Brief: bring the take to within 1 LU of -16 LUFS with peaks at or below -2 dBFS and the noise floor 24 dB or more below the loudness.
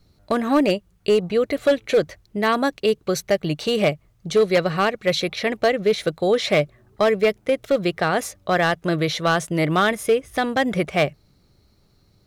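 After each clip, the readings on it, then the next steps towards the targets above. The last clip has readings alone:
clipped samples 0.9%; clipping level -11.0 dBFS; loudness -21.5 LUFS; peak level -11.0 dBFS; loudness target -16.0 LUFS
-> clip repair -11 dBFS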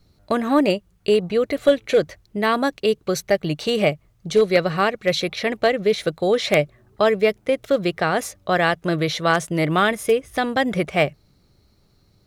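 clipped samples 0.0%; loudness -21.0 LUFS; peak level -2.0 dBFS; loudness target -16.0 LUFS
-> trim +5 dB; peak limiter -2 dBFS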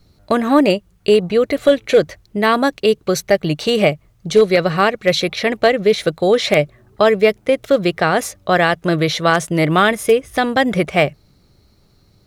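loudness -16.0 LUFS; peak level -2.0 dBFS; noise floor -55 dBFS

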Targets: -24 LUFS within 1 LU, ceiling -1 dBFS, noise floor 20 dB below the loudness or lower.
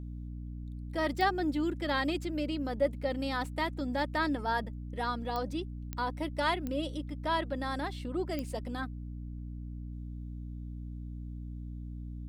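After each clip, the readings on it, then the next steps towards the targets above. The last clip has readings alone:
clicks found 5; hum 60 Hz; highest harmonic 300 Hz; hum level -38 dBFS; loudness -35.0 LUFS; peak level -16.0 dBFS; loudness target -24.0 LUFS
-> de-click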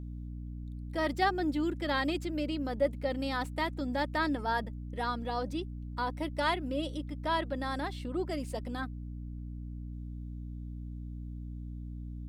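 clicks found 0; hum 60 Hz; highest harmonic 300 Hz; hum level -38 dBFS
-> hum notches 60/120/180/240/300 Hz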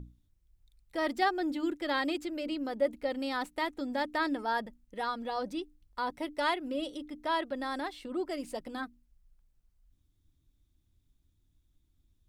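hum not found; loudness -34.0 LUFS; peak level -17.0 dBFS; loudness target -24.0 LUFS
-> trim +10 dB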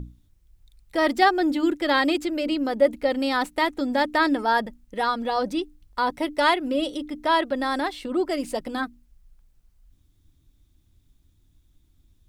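loudness -24.0 LUFS; peak level -7.0 dBFS; noise floor -63 dBFS

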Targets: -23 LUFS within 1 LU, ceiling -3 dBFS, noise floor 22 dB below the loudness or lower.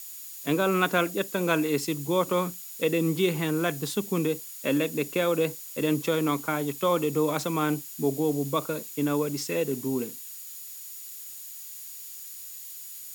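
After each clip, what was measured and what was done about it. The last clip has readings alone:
steady tone 6.9 kHz; tone level -49 dBFS; noise floor -42 dBFS; noise floor target -50 dBFS; loudness -28.0 LUFS; peak level -8.5 dBFS; loudness target -23.0 LUFS
-> band-stop 6.9 kHz, Q 30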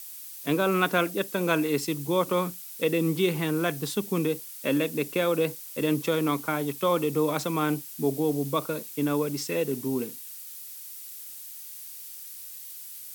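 steady tone not found; noise floor -42 dBFS; noise floor target -49 dBFS
-> noise reduction 7 dB, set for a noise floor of -42 dBFS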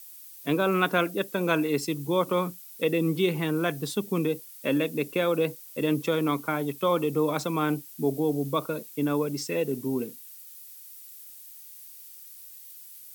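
noise floor -47 dBFS; noise floor target -50 dBFS
-> noise reduction 6 dB, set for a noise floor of -47 dBFS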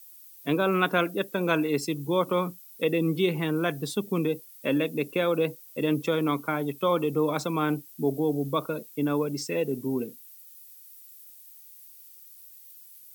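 noise floor -50 dBFS; loudness -27.5 LUFS; peak level -8.5 dBFS; loudness target -23.0 LUFS
-> trim +4.5 dB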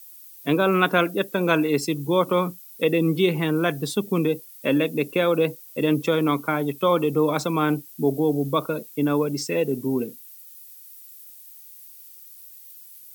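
loudness -23.0 LUFS; peak level -4.0 dBFS; noise floor -46 dBFS

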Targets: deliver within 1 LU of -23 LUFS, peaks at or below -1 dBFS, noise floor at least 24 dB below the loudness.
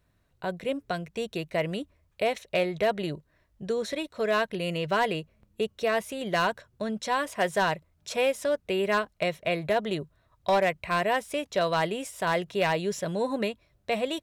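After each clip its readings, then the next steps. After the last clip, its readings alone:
clipped samples 0.4%; clipping level -17.5 dBFS; loudness -29.0 LUFS; peak level -17.5 dBFS; loudness target -23.0 LUFS
-> clip repair -17.5 dBFS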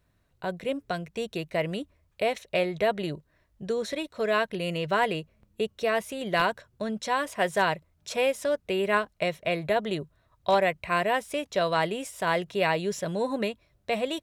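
clipped samples 0.0%; loudness -28.5 LUFS; peak level -8.5 dBFS; loudness target -23.0 LUFS
-> trim +5.5 dB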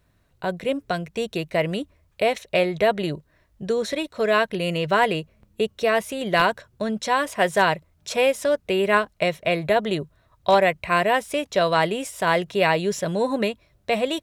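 loudness -23.0 LUFS; peak level -3.0 dBFS; noise floor -64 dBFS

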